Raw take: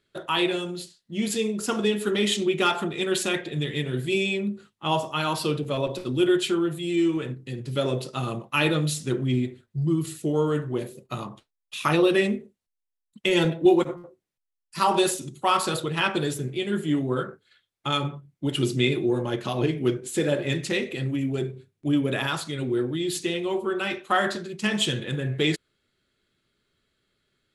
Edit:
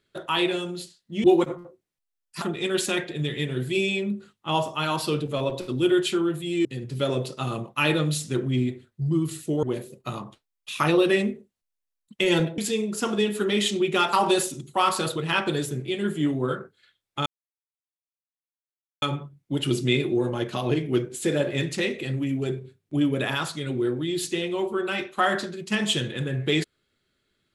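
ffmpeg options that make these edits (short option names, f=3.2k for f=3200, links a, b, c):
-filter_complex "[0:a]asplit=8[a][b][c][d][e][f][g][h];[a]atrim=end=1.242[i];[b]atrim=start=13.628:end=14.812[j];[c]atrim=start=2.788:end=7.022[k];[d]atrim=start=7.408:end=10.392[l];[e]atrim=start=10.678:end=13.632[m];[f]atrim=start=1.238:end=2.792[n];[g]atrim=start=14.808:end=17.94,asetpts=PTS-STARTPTS,afade=t=out:st=3.128:d=0.004:c=hsin,apad=pad_dur=1.76[o];[h]atrim=start=17.94,asetpts=PTS-STARTPTS,afade=t=in:d=0.004:c=hsin[p];[i][j]acrossfade=d=0.004:c1=hsin:c2=hsin[q];[q][k]acrossfade=d=0.004:c1=hsin:c2=hsin[r];[r][l]acrossfade=d=0.004:c1=hsin:c2=hsin[s];[s][m]acrossfade=d=0.004:c1=hsin:c2=hsin[t];[t][n]acrossfade=d=0.004:c1=hsin:c2=hsin[u];[o][p]concat=n=2:v=0:a=1[v];[u][v]acrossfade=d=0.004:c1=hsin:c2=hsin"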